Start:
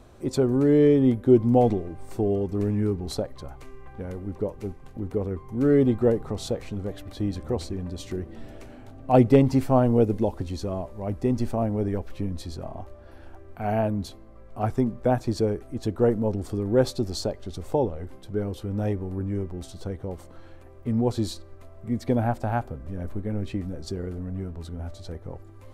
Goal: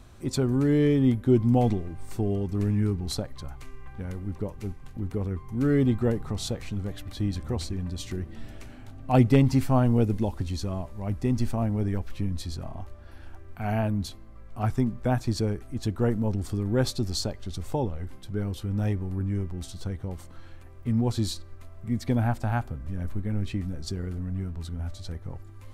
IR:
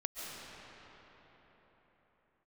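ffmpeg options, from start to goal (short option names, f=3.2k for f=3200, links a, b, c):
-af "equalizer=f=500:t=o:w=1.8:g=-10.5,volume=3dB"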